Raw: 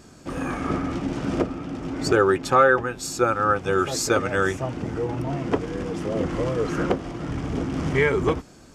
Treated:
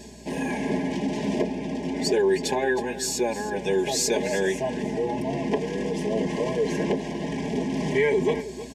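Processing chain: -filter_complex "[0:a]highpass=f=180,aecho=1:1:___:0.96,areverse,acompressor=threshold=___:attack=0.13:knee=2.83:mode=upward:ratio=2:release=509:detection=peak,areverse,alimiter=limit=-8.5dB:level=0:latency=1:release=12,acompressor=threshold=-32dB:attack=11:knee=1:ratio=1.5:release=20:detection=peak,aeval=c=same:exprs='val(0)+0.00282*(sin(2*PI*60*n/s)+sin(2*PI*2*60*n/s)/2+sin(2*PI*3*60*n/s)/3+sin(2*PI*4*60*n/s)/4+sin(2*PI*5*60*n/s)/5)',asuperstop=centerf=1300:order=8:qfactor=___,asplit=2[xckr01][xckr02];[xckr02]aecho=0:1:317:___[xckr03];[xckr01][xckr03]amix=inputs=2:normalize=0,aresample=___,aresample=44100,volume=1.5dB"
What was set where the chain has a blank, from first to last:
4.8, -31dB, 2.1, 0.2, 32000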